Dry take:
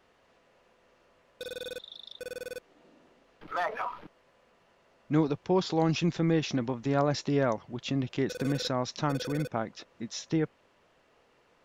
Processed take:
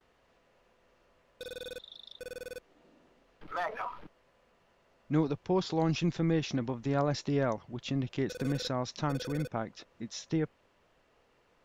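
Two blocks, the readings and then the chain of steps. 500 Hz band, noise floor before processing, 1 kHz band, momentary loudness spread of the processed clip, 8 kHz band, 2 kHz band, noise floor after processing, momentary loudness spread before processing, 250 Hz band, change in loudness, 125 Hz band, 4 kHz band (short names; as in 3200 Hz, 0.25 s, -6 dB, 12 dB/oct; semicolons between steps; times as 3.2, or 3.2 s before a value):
-3.0 dB, -66 dBFS, -3.5 dB, 15 LU, -3.5 dB, -3.5 dB, -69 dBFS, 14 LU, -2.5 dB, -2.5 dB, -1.5 dB, -3.5 dB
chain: gate with hold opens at -59 dBFS; low shelf 75 Hz +9.5 dB; gain -3.5 dB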